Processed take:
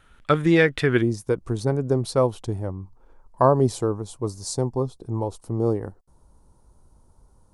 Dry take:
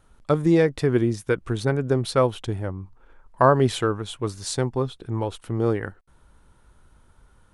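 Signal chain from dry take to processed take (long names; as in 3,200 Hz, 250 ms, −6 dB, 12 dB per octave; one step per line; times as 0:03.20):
flat-topped bell 2,200 Hz +9.5 dB, from 0:01.01 −9.5 dB, from 0:03.47 −16 dB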